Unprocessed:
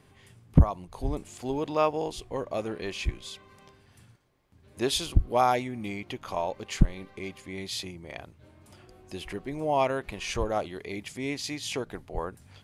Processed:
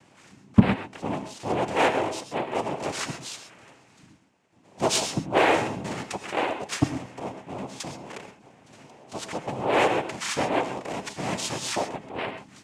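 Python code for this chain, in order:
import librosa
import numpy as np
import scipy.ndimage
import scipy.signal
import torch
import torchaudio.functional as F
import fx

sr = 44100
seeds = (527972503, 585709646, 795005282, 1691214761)

p1 = fx.lowpass(x, sr, hz=1500.0, slope=12, at=(7.19, 7.8))
p2 = fx.noise_vocoder(p1, sr, seeds[0], bands=4)
p3 = 10.0 ** (-21.0 / 20.0) * (np.abs((p2 / 10.0 ** (-21.0 / 20.0) + 3.0) % 4.0 - 2.0) - 1.0)
p4 = p2 + (p3 * librosa.db_to_amplitude(-12.0))
p5 = fx.rev_gated(p4, sr, seeds[1], gate_ms=150, shape='rising', drr_db=8.5)
y = p5 * librosa.db_to_amplitude(2.0)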